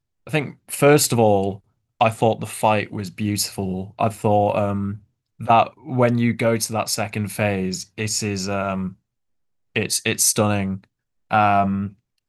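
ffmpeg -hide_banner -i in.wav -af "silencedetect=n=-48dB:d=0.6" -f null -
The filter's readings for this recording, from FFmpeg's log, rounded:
silence_start: 8.94
silence_end: 9.75 | silence_duration: 0.81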